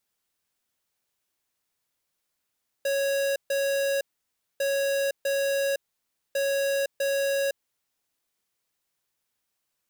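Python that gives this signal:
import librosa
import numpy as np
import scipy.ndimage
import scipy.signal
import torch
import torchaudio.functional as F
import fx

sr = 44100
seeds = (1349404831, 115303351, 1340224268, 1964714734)

y = fx.beep_pattern(sr, wave='square', hz=553.0, on_s=0.51, off_s=0.14, beeps=2, pause_s=0.59, groups=3, level_db=-25.5)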